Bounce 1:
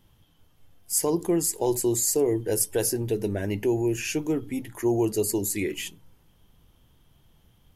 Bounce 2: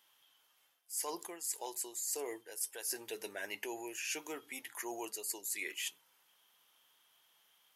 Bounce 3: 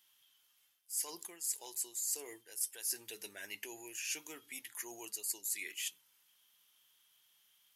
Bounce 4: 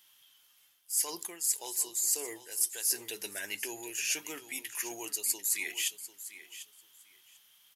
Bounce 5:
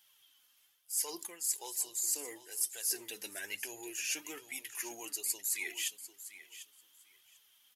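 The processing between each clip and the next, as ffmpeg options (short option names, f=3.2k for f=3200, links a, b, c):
-af "highpass=1.1k,areverse,acompressor=threshold=-36dB:ratio=10,areverse"
-af "equalizer=f=650:t=o:w=2.9:g=-13,acrusher=bits=8:mode=log:mix=0:aa=0.000001,volume=2dB"
-af "aecho=1:1:745|1490:0.2|0.0339,volume=7.5dB"
-af "flanger=delay=1.2:depth=2.9:regen=35:speed=1.1:shape=triangular"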